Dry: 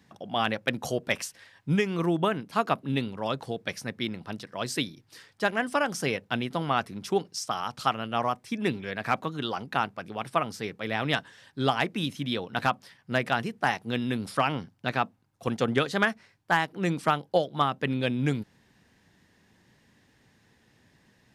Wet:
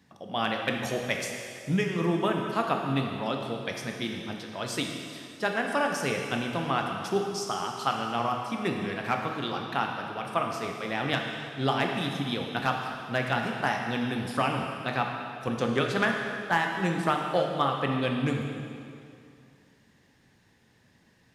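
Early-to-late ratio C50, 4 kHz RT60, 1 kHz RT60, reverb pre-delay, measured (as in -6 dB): 3.0 dB, 2.2 s, 2.4 s, 8 ms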